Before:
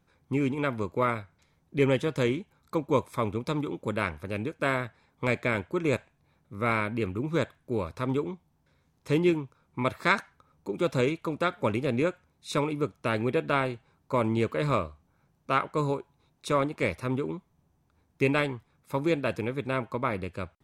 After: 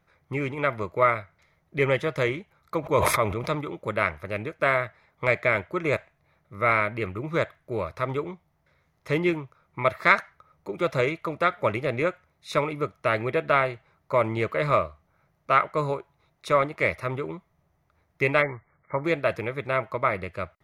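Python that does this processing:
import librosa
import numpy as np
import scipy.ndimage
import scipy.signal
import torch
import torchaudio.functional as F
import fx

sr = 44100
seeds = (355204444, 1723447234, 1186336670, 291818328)

y = fx.sustainer(x, sr, db_per_s=30.0, at=(2.8, 3.55))
y = fx.brickwall_lowpass(y, sr, high_hz=2300.0, at=(18.41, 19.04), fade=0.02)
y = fx.graphic_eq_31(y, sr, hz=(250, 630, 1250, 2000, 8000), db=(-11, 9, 7, 11, -8))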